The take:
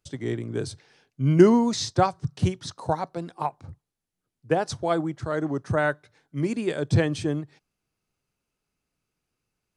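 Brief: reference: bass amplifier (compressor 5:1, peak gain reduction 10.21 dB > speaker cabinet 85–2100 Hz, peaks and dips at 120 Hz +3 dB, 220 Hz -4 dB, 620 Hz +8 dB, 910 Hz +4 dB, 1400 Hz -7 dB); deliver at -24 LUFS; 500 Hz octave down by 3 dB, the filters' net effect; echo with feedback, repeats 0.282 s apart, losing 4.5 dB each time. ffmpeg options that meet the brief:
-af "equalizer=f=500:t=o:g=-8.5,aecho=1:1:282|564|846|1128|1410|1692|1974|2256|2538:0.596|0.357|0.214|0.129|0.0772|0.0463|0.0278|0.0167|0.01,acompressor=threshold=-23dB:ratio=5,highpass=f=85:w=0.5412,highpass=f=85:w=1.3066,equalizer=f=120:t=q:w=4:g=3,equalizer=f=220:t=q:w=4:g=-4,equalizer=f=620:t=q:w=4:g=8,equalizer=f=910:t=q:w=4:g=4,equalizer=f=1.4k:t=q:w=4:g=-7,lowpass=f=2.1k:w=0.5412,lowpass=f=2.1k:w=1.3066,volume=5.5dB"

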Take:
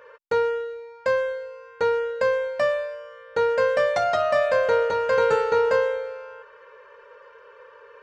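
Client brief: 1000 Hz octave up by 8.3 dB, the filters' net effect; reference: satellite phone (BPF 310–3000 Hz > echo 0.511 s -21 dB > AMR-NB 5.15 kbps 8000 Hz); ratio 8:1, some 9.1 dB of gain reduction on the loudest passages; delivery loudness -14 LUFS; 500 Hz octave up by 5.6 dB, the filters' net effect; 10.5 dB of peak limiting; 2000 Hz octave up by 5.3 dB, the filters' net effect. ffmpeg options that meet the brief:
-af "equalizer=f=500:t=o:g=4.5,equalizer=f=1k:t=o:g=8.5,equalizer=f=2k:t=o:g=3.5,acompressor=threshold=-19dB:ratio=8,alimiter=limit=-19dB:level=0:latency=1,highpass=310,lowpass=3k,aecho=1:1:511:0.0891,volume=14.5dB" -ar 8000 -c:a libopencore_amrnb -b:a 5150

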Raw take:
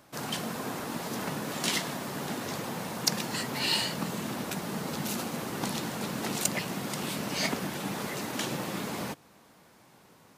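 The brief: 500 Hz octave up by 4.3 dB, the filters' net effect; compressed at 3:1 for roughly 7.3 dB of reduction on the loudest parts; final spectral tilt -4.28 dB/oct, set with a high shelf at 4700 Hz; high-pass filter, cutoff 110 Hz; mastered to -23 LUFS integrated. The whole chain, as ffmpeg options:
-af "highpass=110,equalizer=f=500:t=o:g=5.5,highshelf=f=4.7k:g=-8,acompressor=threshold=-34dB:ratio=3,volume=14dB"

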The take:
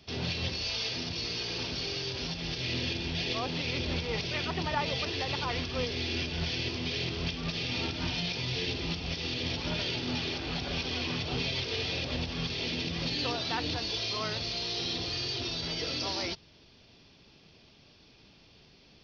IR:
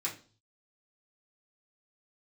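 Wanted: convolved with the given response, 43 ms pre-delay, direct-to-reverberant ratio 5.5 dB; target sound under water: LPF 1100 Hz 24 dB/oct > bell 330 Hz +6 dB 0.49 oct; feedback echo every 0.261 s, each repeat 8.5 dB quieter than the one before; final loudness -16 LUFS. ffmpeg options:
-filter_complex "[0:a]aecho=1:1:261|522|783|1044:0.376|0.143|0.0543|0.0206,asplit=2[a][b];[1:a]atrim=start_sample=2205,adelay=43[c];[b][c]afir=irnorm=-1:irlink=0,volume=-9dB[d];[a][d]amix=inputs=2:normalize=0,lowpass=f=1.1k:w=0.5412,lowpass=f=1.1k:w=1.3066,equalizer=f=330:t=o:w=0.49:g=6,volume=18dB"

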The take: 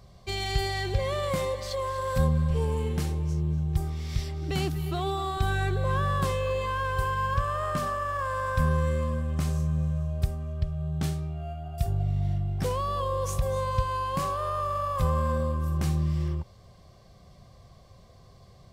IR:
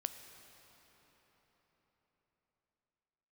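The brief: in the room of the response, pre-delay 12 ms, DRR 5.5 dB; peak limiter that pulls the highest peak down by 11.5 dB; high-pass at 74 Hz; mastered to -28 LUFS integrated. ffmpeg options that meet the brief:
-filter_complex "[0:a]highpass=74,alimiter=level_in=2dB:limit=-24dB:level=0:latency=1,volume=-2dB,asplit=2[a][b];[1:a]atrim=start_sample=2205,adelay=12[c];[b][c]afir=irnorm=-1:irlink=0,volume=-4.5dB[d];[a][d]amix=inputs=2:normalize=0,volume=4.5dB"

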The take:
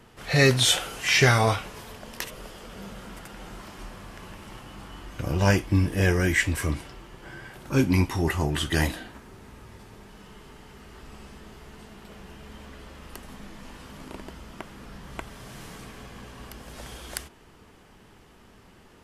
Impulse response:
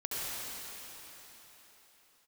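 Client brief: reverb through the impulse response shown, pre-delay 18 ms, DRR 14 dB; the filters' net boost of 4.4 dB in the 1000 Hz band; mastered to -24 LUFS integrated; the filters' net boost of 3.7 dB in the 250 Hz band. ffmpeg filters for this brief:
-filter_complex "[0:a]equalizer=f=250:t=o:g=4.5,equalizer=f=1k:t=o:g=5.5,asplit=2[a][b];[1:a]atrim=start_sample=2205,adelay=18[c];[b][c]afir=irnorm=-1:irlink=0,volume=-20dB[d];[a][d]amix=inputs=2:normalize=0,volume=-2dB"

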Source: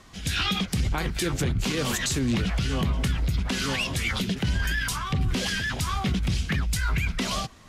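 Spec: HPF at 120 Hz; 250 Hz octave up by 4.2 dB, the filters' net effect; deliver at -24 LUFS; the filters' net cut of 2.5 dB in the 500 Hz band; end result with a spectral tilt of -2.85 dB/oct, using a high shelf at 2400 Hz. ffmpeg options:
-af "highpass=120,equalizer=f=250:t=o:g=7.5,equalizer=f=500:t=o:g=-7,highshelf=f=2.4k:g=8,volume=-0.5dB"

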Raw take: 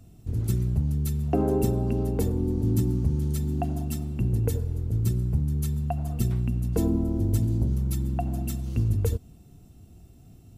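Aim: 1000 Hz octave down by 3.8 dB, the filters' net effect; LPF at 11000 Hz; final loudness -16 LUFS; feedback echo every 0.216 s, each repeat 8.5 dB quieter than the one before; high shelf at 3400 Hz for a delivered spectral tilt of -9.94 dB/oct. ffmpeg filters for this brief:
-af "lowpass=11k,equalizer=f=1k:t=o:g=-6,highshelf=f=3.4k:g=-8,aecho=1:1:216|432|648|864:0.376|0.143|0.0543|0.0206,volume=10.5dB"

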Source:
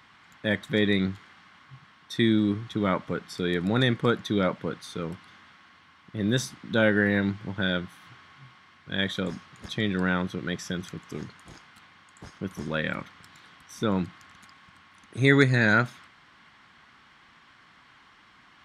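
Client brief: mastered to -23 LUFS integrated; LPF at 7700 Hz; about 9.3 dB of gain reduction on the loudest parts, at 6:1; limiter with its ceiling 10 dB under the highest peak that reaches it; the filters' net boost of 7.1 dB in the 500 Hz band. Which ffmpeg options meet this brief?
-af "lowpass=7.7k,equalizer=f=500:t=o:g=8.5,acompressor=threshold=-21dB:ratio=6,volume=10.5dB,alimiter=limit=-10dB:level=0:latency=1"

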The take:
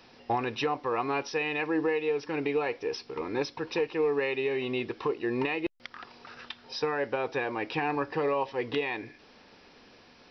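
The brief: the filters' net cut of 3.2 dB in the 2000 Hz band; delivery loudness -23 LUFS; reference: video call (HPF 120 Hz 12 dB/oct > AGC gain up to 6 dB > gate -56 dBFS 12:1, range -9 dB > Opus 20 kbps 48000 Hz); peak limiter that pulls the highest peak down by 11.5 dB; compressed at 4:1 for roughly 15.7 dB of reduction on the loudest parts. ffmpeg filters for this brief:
-af "equalizer=f=2k:t=o:g=-4,acompressor=threshold=-44dB:ratio=4,alimiter=level_in=16dB:limit=-24dB:level=0:latency=1,volume=-16dB,highpass=120,dynaudnorm=m=6dB,agate=range=-9dB:threshold=-56dB:ratio=12,volume=27dB" -ar 48000 -c:a libopus -b:a 20k

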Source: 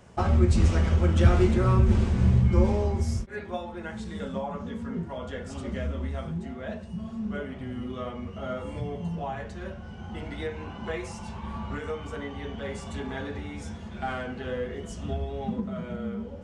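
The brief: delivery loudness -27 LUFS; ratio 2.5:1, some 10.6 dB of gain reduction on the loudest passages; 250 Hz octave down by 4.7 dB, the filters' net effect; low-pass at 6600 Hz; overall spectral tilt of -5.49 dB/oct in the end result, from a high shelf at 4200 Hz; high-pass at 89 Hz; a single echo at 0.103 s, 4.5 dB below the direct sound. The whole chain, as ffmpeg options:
-af "highpass=89,lowpass=6.6k,equalizer=f=250:t=o:g=-6.5,highshelf=f=4.2k:g=4,acompressor=threshold=-32dB:ratio=2.5,aecho=1:1:103:0.596,volume=9dB"

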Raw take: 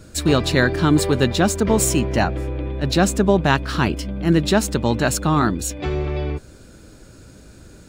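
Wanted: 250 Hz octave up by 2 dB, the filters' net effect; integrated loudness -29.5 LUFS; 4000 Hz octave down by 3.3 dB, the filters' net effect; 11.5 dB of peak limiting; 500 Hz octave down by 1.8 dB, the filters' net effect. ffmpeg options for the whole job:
-af "equalizer=f=250:t=o:g=4,equalizer=f=500:t=o:g=-4,equalizer=f=4k:t=o:g=-4,volume=-6dB,alimiter=limit=-19.5dB:level=0:latency=1"

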